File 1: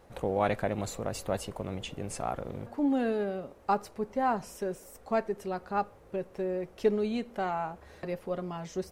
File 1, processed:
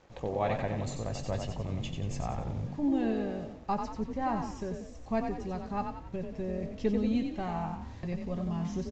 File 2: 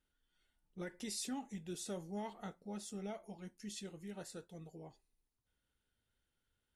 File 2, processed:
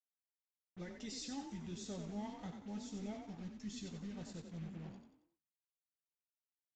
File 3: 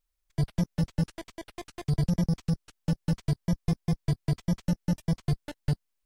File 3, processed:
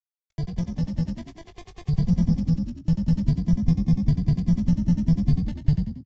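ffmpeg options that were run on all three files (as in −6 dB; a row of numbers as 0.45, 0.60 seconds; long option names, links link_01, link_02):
-filter_complex "[0:a]bandreject=frequency=1400:width=5.7,asubboost=boost=6:cutoff=170,acrusher=bits=8:mix=0:aa=0.5,asplit=2[link_01][link_02];[link_02]adelay=18,volume=-11.5dB[link_03];[link_01][link_03]amix=inputs=2:normalize=0,asplit=2[link_04][link_05];[link_05]asplit=5[link_06][link_07][link_08][link_09][link_10];[link_06]adelay=91,afreqshift=36,volume=-6dB[link_11];[link_07]adelay=182,afreqshift=72,volume=-13.7dB[link_12];[link_08]adelay=273,afreqshift=108,volume=-21.5dB[link_13];[link_09]adelay=364,afreqshift=144,volume=-29.2dB[link_14];[link_10]adelay=455,afreqshift=180,volume=-37dB[link_15];[link_11][link_12][link_13][link_14][link_15]amix=inputs=5:normalize=0[link_16];[link_04][link_16]amix=inputs=2:normalize=0,aresample=16000,aresample=44100,volume=-3.5dB"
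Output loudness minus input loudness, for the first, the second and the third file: −1.0, −1.0, +6.0 LU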